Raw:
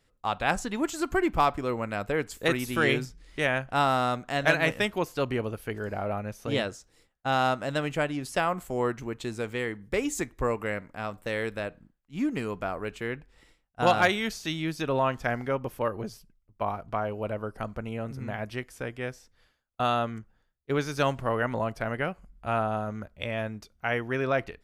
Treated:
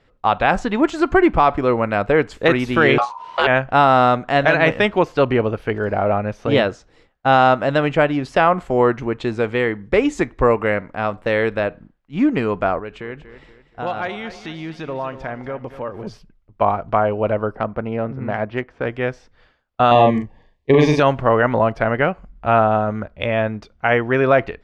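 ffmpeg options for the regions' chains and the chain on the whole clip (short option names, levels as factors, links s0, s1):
-filter_complex "[0:a]asettb=1/sr,asplit=3[s0][s1][s2];[s0]atrim=end=2.984[s3];[s1]atrim=start=2.98:end=3.47,asetpts=PTS-STARTPTS,afade=t=in:d=0.004:c=qsin,afade=t=out:st=0.486:d=0.004:c=qsin,aeval=exprs='val(0)*sin(2*PI*970*n/s)':c=same,acontrast=49[s4];[s2]atrim=start=3.466[s5];[s3][s4]acrossfade=d=0.004:c1=hsin:c2=qsin[s6];[s6][s5]acrossfade=d=0.004:c1=qsin:c2=hsin,asettb=1/sr,asplit=3[s7][s8][s9];[s7]atrim=end=12.794[s10];[s8]atrim=start=12.79:end=16.07,asetpts=PTS-STARTPTS,afade=t=in:d=0.004:c=qsin,afade=t=out:st=3.276:d=0.004:c=qsin,acompressor=threshold=0.00501:ratio=2:attack=3.2:release=140:knee=1:detection=peak,aecho=1:1:238|476|714|952:0.237|0.0949|0.0379|0.0152,atrim=end_sample=144648[s11];[s9]atrim=start=16.066[s12];[s10][s11]acrossfade=d=0.004:c1=hsin:c2=qsin[s13];[s13][s12]acrossfade=d=0.004:c1=qsin:c2=hsin,asettb=1/sr,asplit=3[s14][s15][s16];[s14]atrim=end=17.554[s17];[s15]atrim=start=17.55:end=18.86,asetpts=PTS-STARTPTS,afade=t=in:d=0.004:c=qsin,afade=t=out:st=1.306:d=0.004:c=qsin,lowshelf=f=66:g=-10.5,adynamicsmooth=sensitivity=2:basefreq=2200[s18];[s16]atrim=start=18.856[s19];[s17][s18]acrossfade=d=0.004:c1=hsin:c2=qsin[s20];[s20][s19]acrossfade=d=0.004:c1=qsin:c2=hsin,asettb=1/sr,asplit=3[s21][s22][s23];[s21]atrim=end=19.914[s24];[s22]atrim=start=19.91:end=21,asetpts=PTS-STARTPTS,afade=t=in:d=0.004:c=qsin,afade=t=out:st=1.086:d=0.004:c=qsin,asuperstop=centerf=1400:order=8:qfactor=2.6,acontrast=53,asplit=2[s25][s26];[s26]adelay=40,volume=0.631[s27];[s25][s27]amix=inputs=2:normalize=0,atrim=end_sample=48069[s28];[s23]atrim=start=20.996[s29];[s24][s28]acrossfade=d=0.004:c1=hsin:c2=qsin[s30];[s30][s29]acrossfade=d=0.004:c1=qsin:c2=hsin,lowpass=3400,equalizer=f=650:t=o:w=2.2:g=3.5,alimiter=level_in=4.22:limit=0.891:release=50:level=0:latency=1,volume=0.75"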